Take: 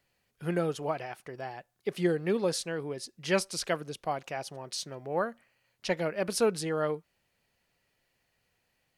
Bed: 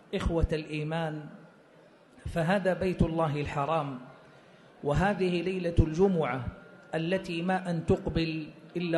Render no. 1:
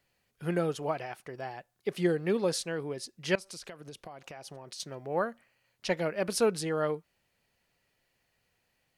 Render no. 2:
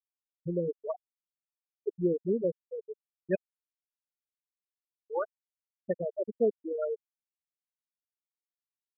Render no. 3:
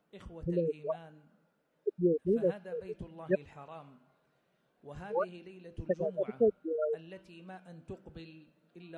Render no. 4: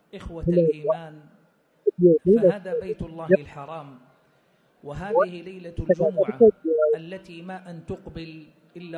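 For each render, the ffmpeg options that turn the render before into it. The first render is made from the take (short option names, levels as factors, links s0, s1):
-filter_complex "[0:a]asettb=1/sr,asplit=3[s0][s1][s2];[s0]atrim=end=3.354[s3];[s1]atrim=start=3.35:end=4.8,asetpts=PTS-STARTPTS,afade=t=in:d=0.004:c=qsin,afade=t=out:st=1.446:d=0.004:c=qsin,acompressor=threshold=0.01:ratio=20:attack=3.2:release=140:knee=1:detection=peak[s4];[s2]atrim=start=4.796[s5];[s3][s4]acrossfade=d=0.004:c1=hsin:c2=qsin[s6];[s6][s5]acrossfade=d=0.004:c1=qsin:c2=hsin"
-af "afftfilt=real='re*gte(hypot(re,im),0.178)':imag='im*gte(hypot(re,im),0.178)':win_size=1024:overlap=0.75,lowpass=2100"
-filter_complex "[1:a]volume=0.106[s0];[0:a][s0]amix=inputs=2:normalize=0"
-af "volume=3.98"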